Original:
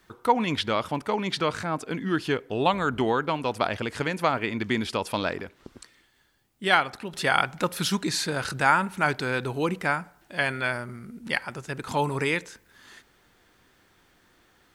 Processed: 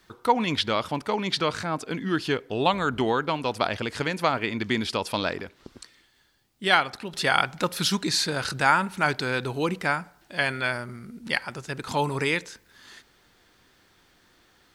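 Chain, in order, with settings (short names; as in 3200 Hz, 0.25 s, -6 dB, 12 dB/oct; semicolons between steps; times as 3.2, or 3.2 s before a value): bell 4500 Hz +5 dB 1 oct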